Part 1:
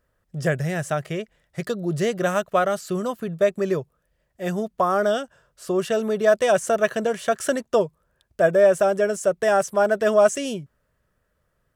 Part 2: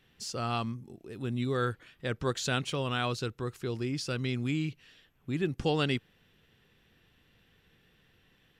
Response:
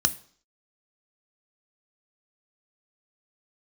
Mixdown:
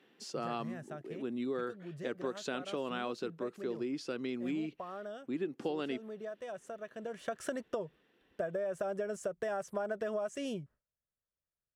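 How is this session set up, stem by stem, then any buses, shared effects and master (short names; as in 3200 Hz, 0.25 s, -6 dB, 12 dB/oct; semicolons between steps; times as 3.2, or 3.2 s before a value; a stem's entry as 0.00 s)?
6.93 s -19.5 dB -> 7.35 s -8.5 dB, 0.00 s, no send, gate with hold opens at -41 dBFS; high shelf 4300 Hz -9.5 dB; compressor, threshold -20 dBFS, peak gain reduction 8.5 dB
+3.0 dB, 0.00 s, no send, HPF 270 Hz 24 dB/oct; tilt -3 dB/oct; auto duck -6 dB, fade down 0.45 s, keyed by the first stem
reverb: off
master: compressor, threshold -32 dBFS, peak gain reduction 8 dB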